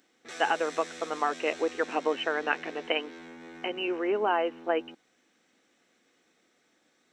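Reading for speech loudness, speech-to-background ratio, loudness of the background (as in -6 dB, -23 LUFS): -30.0 LUFS, 14.5 dB, -44.5 LUFS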